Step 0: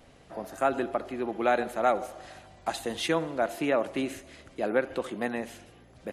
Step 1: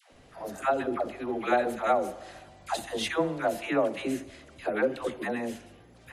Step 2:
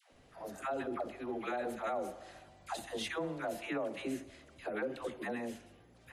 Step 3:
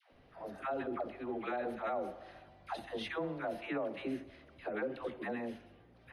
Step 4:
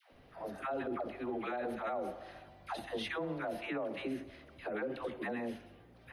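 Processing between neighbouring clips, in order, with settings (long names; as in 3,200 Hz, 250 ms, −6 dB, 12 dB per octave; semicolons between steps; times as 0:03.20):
all-pass dispersion lows, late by 122 ms, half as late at 580 Hz
brickwall limiter −21 dBFS, peak gain reduction 8.5 dB; level −7 dB
moving average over 6 samples
high-shelf EQ 8,100 Hz +6 dB; brickwall limiter −32 dBFS, peak gain reduction 4 dB; level +2.5 dB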